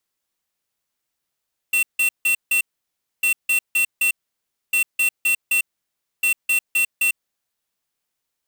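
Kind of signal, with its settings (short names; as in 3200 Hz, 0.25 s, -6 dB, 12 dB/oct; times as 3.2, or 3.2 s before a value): beep pattern square 2710 Hz, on 0.10 s, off 0.16 s, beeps 4, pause 0.62 s, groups 4, -18 dBFS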